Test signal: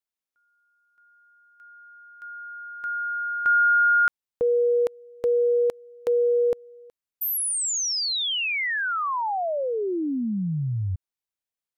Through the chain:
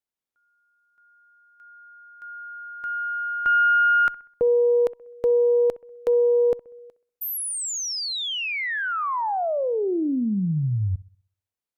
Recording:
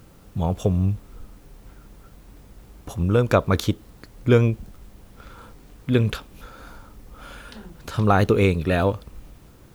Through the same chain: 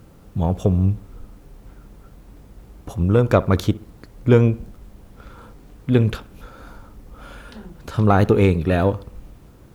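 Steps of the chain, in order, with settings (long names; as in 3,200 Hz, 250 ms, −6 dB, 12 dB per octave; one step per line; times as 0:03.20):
harmonic generator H 4 −26 dB, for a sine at −4 dBFS
tilt shelving filter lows +3 dB, about 1,300 Hz
bucket-brigade delay 64 ms, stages 1,024, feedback 42%, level −19.5 dB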